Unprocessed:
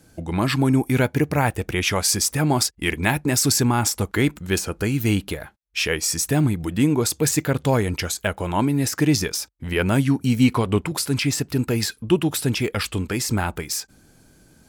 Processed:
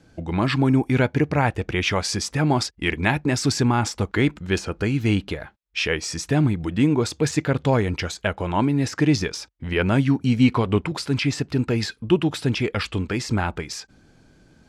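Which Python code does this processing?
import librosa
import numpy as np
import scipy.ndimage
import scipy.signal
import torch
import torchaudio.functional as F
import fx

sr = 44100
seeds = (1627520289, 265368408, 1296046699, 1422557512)

y = scipy.signal.sosfilt(scipy.signal.butter(2, 4600.0, 'lowpass', fs=sr, output='sos'), x)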